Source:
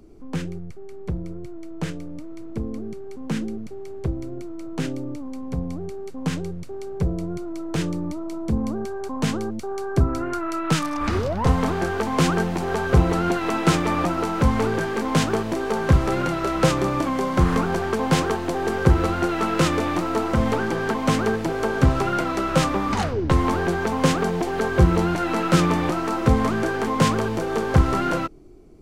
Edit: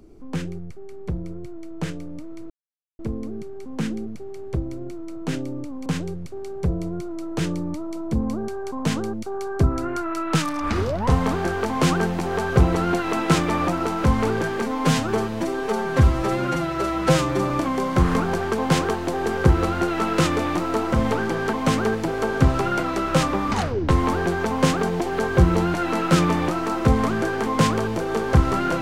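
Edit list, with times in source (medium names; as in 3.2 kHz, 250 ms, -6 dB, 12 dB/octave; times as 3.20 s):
2.50 s: insert silence 0.49 s
5.37–6.23 s: delete
14.99–16.91 s: stretch 1.5×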